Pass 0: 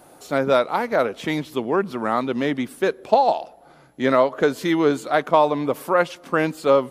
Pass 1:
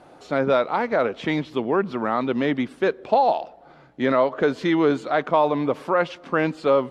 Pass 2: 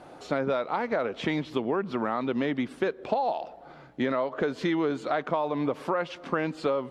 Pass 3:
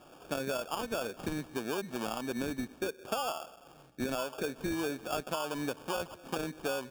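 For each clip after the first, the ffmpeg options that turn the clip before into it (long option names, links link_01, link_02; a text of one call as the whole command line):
ffmpeg -i in.wav -filter_complex "[0:a]lowpass=4000,asplit=2[link_01][link_02];[link_02]alimiter=limit=-13.5dB:level=0:latency=1:release=24,volume=2.5dB[link_03];[link_01][link_03]amix=inputs=2:normalize=0,volume=-6.5dB" out.wav
ffmpeg -i in.wav -af "acompressor=threshold=-25dB:ratio=6,volume=1dB" out.wav
ffmpeg -i in.wav -af "acrusher=samples=22:mix=1:aa=0.000001,volume=-7.5dB" out.wav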